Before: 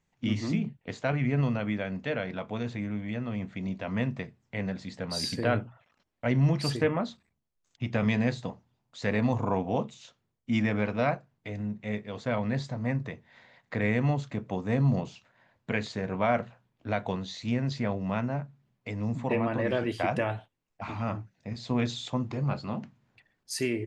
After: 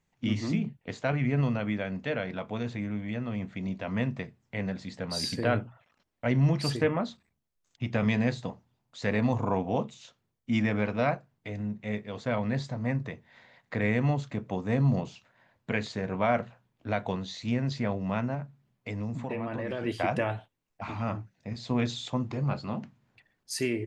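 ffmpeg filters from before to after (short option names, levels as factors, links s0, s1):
-filter_complex "[0:a]asettb=1/sr,asplit=3[s0][s1][s2];[s0]atrim=end=18.344[s3];[s1]atrim=start=18.34:end=19.84,asetpts=PTS-STARTPTS,afade=t=in:d=0.004:c=qsin,afade=t=out:st=1.496:d=0.004:c=qsin,acompressor=threshold=0.0355:ratio=6:attack=3.2:release=140:knee=1:detection=peak[s4];[s2]atrim=start=19.836[s5];[s3][s4]acrossfade=d=0.004:c1=hsin:c2=qsin[s6];[s6][s5]acrossfade=d=0.004:c1=qsin:c2=hsin"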